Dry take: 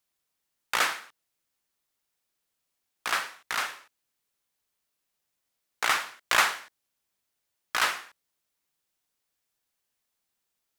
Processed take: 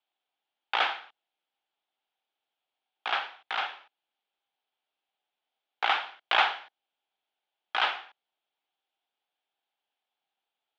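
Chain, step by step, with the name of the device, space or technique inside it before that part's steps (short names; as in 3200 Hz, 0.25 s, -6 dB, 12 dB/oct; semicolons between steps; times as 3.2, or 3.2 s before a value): phone earpiece (speaker cabinet 390–3400 Hz, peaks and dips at 520 Hz -3 dB, 790 Hz +10 dB, 1100 Hz -5 dB, 1900 Hz -6 dB, 3300 Hz +6 dB)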